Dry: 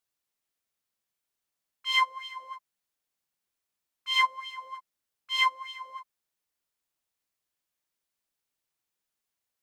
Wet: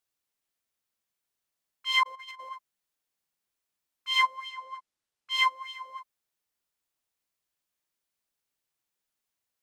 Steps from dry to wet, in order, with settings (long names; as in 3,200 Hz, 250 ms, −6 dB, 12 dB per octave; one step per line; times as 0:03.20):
0:02.03–0:02.49: compressor whose output falls as the input rises −44 dBFS, ratio −0.5
0:04.49–0:05.31: Bessel low-pass filter 8,700 Hz